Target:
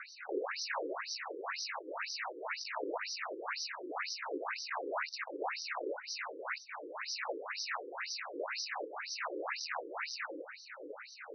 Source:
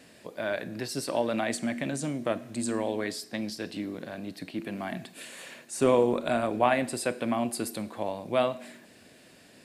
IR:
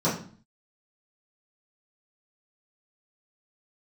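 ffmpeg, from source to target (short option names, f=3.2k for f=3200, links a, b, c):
-af "bandreject=f=301.3:t=h:w=4,bandreject=f=602.6:t=h:w=4,bandreject=f=903.9:t=h:w=4,bandreject=f=1.2052k:t=h:w=4,asoftclip=type=tanh:threshold=-14.5dB,asetrate=37485,aresample=44100,aeval=exprs='(mod(106*val(0)+1,2)-1)/106':c=same,asuperstop=centerf=3300:order=4:qfactor=1.6,afftfilt=real='re*between(b*sr/1024,370*pow(4400/370,0.5+0.5*sin(2*PI*2*pts/sr))/1.41,370*pow(4400/370,0.5+0.5*sin(2*PI*2*pts/sr))*1.41)':imag='im*between(b*sr/1024,370*pow(4400/370,0.5+0.5*sin(2*PI*2*pts/sr))/1.41,370*pow(4400/370,0.5+0.5*sin(2*PI*2*pts/sr))*1.41)':win_size=1024:overlap=0.75,volume=16.5dB"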